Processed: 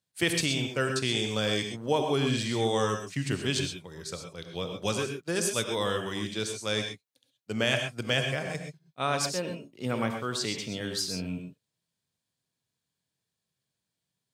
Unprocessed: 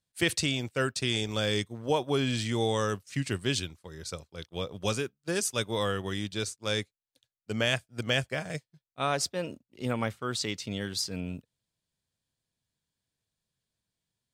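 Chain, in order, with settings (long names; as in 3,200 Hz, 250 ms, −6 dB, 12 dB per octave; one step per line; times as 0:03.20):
high-pass filter 98 Hz
reverb whose tail is shaped and stops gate 150 ms rising, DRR 4.5 dB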